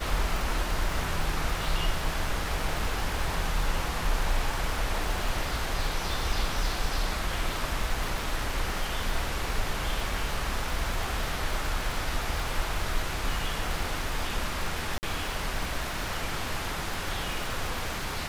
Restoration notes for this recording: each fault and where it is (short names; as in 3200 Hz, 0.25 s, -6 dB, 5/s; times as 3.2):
crackle 160/s -33 dBFS
14.98–15.03 gap 49 ms